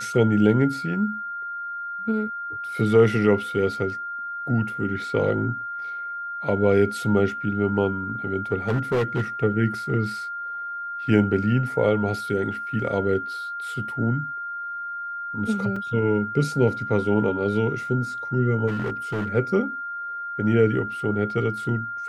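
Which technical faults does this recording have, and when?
tone 1400 Hz -29 dBFS
8.68–9.22 clipped -18.5 dBFS
15.76 gap 4 ms
18.67–19.29 clipped -22.5 dBFS

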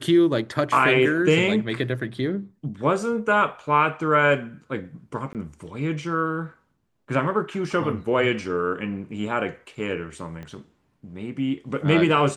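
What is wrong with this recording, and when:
5.33–5.35 gap 18 ms
10.43 pop -25 dBFS

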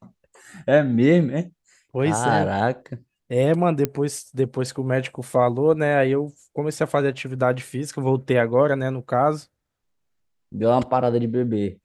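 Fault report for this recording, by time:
3.85 pop -9 dBFS

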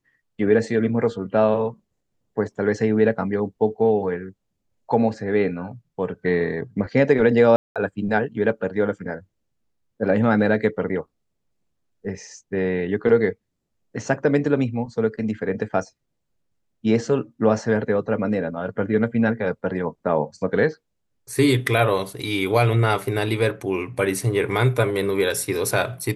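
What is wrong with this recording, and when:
7.56–7.76 gap 0.197 s

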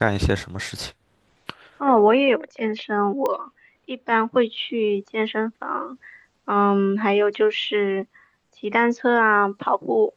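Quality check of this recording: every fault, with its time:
3.26 pop -12 dBFS

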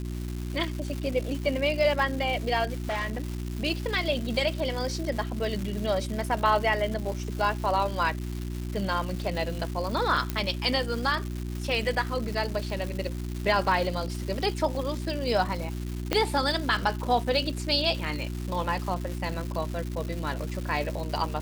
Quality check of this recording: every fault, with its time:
crackle 450/s -33 dBFS
hum 60 Hz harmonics 6 -33 dBFS
2.8–3.37 clipped -25.5 dBFS
10.3 pop -13 dBFS
16.13 pop -9 dBFS

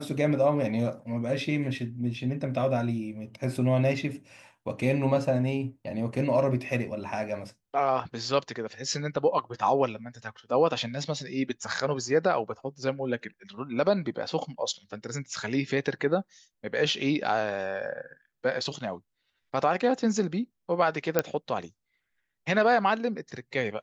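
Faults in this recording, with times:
21.19 pop -8 dBFS

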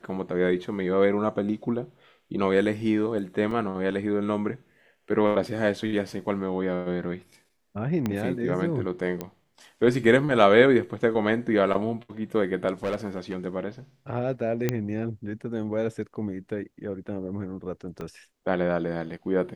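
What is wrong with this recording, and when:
3.51 gap 3.4 ms
8.06 pop -14 dBFS
9.21 pop -17 dBFS
12.84–13.35 clipped -23.5 dBFS
14.69 pop -10 dBFS
18.01 gap 3.1 ms

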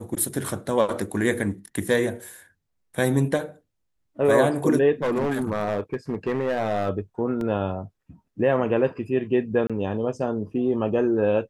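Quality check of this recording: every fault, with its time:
5.02–6.9 clipped -20 dBFS
7.41 gap 2.1 ms
9.67–9.7 gap 26 ms

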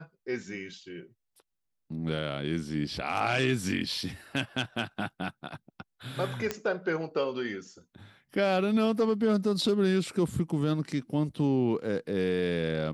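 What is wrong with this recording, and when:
6.51 pop -15 dBFS

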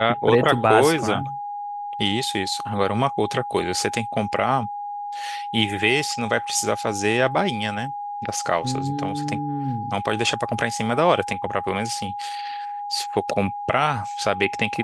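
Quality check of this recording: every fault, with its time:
tone 820 Hz -28 dBFS

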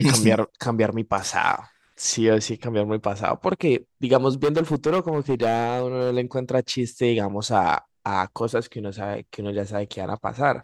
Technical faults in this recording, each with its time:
4.43–6.18 clipped -16 dBFS

